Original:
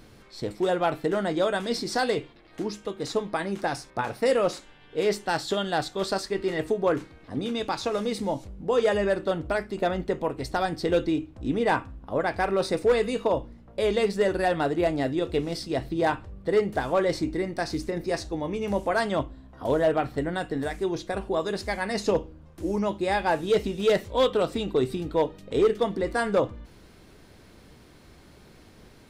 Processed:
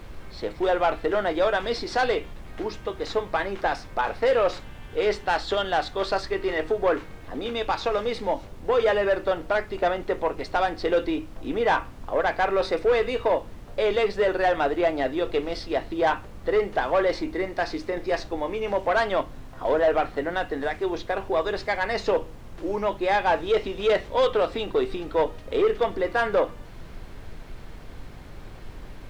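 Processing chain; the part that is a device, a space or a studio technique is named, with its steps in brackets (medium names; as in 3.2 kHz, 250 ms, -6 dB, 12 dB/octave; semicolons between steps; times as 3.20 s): aircraft cabin announcement (band-pass 450–3300 Hz; saturation -20 dBFS, distortion -15 dB; brown noise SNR 13 dB); trim +6 dB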